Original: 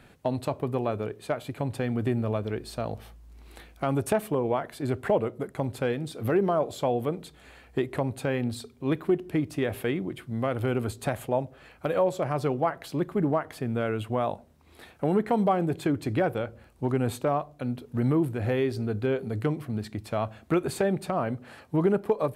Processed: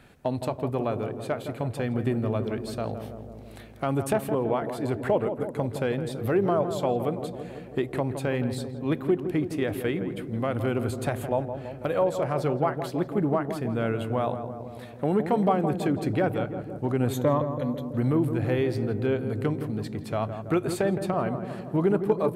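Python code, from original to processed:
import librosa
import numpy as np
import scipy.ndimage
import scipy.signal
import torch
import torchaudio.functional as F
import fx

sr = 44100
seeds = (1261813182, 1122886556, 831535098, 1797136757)

y = fx.ripple_eq(x, sr, per_octave=1.1, db=12, at=(17.13, 17.83))
y = fx.echo_filtered(y, sr, ms=165, feedback_pct=73, hz=1100.0, wet_db=-7.5)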